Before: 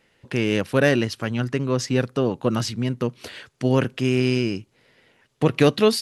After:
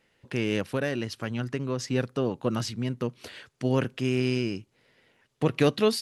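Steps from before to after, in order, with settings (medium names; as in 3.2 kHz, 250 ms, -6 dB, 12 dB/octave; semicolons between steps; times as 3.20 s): 0.69–1.88 s: compression 5:1, threshold -19 dBFS, peak gain reduction 6.5 dB; trim -5.5 dB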